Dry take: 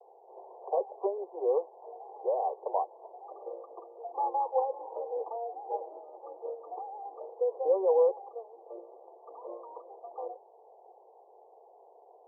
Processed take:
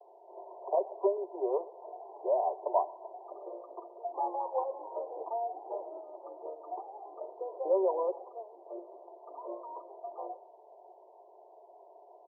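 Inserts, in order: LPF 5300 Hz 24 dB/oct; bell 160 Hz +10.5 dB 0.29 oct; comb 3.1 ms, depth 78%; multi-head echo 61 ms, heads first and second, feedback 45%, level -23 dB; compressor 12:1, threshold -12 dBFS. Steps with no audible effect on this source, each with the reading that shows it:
LPF 5300 Hz: input band ends at 1100 Hz; bell 160 Hz: input band starts at 340 Hz; compressor, threshold -12 dBFS: input peak -15.0 dBFS

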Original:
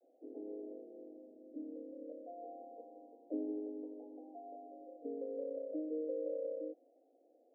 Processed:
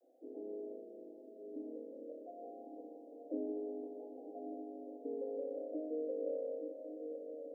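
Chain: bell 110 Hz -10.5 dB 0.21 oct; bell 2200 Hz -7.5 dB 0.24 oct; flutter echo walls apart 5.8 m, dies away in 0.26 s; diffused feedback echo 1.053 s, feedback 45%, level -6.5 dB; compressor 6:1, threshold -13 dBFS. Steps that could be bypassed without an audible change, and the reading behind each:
bell 110 Hz: input band starts at 230 Hz; bell 2200 Hz: input band ends at 810 Hz; compressor, threshold -13 dBFS: input peak -28.5 dBFS

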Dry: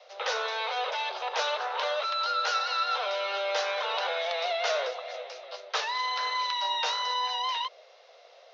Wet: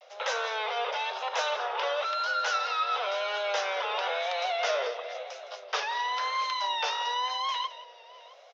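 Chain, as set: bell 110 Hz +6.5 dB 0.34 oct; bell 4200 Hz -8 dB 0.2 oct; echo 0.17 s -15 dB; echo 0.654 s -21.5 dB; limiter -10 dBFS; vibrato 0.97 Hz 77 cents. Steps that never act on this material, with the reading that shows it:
bell 110 Hz: input band starts at 380 Hz; limiter -10 dBFS: input peak -16.0 dBFS

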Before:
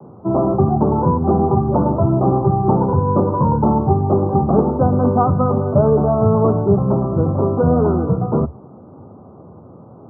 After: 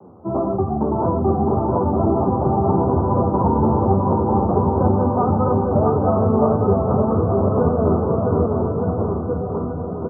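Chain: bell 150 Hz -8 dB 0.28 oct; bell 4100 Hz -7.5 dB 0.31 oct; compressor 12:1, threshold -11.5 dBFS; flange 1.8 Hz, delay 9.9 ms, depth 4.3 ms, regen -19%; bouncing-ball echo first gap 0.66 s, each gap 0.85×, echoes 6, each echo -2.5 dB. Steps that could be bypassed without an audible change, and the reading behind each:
bell 4100 Hz: input band ends at 1400 Hz

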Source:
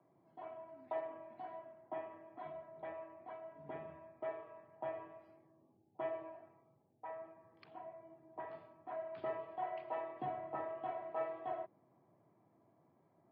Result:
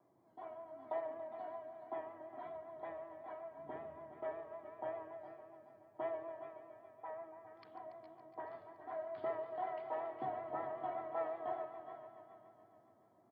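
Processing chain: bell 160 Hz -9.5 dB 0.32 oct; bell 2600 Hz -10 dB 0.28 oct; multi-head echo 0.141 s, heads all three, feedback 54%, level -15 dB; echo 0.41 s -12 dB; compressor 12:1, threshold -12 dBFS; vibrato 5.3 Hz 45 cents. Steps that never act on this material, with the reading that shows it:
compressor, threshold -12 dBFS: input peak -28.0 dBFS

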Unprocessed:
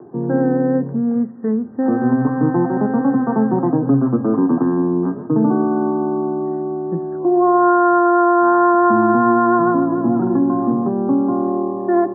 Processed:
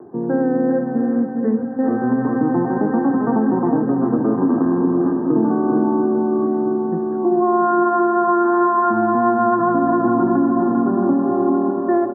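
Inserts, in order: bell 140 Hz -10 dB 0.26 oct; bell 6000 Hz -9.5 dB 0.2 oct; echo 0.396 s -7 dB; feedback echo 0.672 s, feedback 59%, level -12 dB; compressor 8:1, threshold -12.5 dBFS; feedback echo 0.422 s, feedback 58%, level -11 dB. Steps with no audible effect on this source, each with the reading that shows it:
bell 6000 Hz: input band ends at 1400 Hz

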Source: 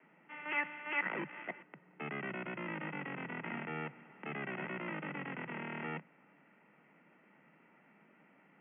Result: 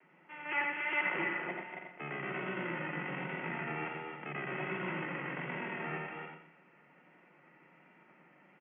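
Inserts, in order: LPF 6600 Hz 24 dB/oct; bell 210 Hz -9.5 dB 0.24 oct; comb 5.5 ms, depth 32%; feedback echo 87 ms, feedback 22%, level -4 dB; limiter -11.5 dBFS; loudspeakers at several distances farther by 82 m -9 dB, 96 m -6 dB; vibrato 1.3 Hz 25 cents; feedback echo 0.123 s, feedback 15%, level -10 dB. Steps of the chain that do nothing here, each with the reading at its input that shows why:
LPF 6600 Hz: input band ends at 3200 Hz; limiter -11.5 dBFS: input peak -19.5 dBFS

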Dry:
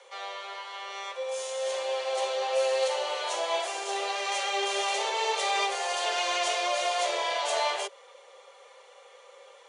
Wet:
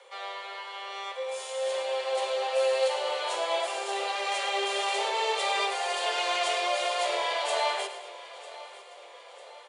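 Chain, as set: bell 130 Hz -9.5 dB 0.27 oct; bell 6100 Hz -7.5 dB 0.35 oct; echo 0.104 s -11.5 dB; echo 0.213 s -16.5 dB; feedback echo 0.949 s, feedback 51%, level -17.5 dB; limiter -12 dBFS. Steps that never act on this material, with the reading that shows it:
bell 130 Hz: input band starts at 320 Hz; limiter -12 dBFS: input peak -15.0 dBFS

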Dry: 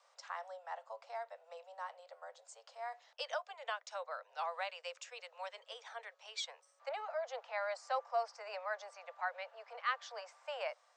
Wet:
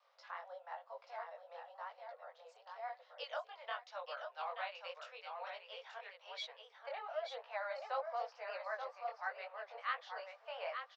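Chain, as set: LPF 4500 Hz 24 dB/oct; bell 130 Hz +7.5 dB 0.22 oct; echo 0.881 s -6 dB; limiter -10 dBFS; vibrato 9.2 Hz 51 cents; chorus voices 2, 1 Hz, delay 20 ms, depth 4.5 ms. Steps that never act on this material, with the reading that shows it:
bell 130 Hz: input band starts at 400 Hz; limiter -10 dBFS: input peak -22.5 dBFS

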